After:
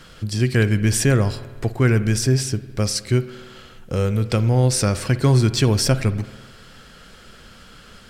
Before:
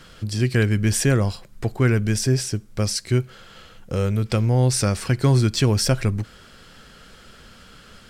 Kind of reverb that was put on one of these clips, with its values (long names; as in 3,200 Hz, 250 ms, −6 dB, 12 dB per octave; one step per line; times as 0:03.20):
spring reverb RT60 1.4 s, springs 53 ms, chirp 30 ms, DRR 13.5 dB
level +1.5 dB